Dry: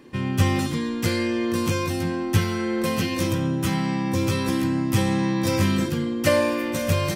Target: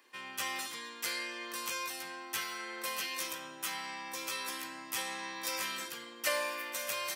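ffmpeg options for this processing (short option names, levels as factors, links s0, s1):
-af "highpass=970,highshelf=f=10000:g=7.5,volume=0.447"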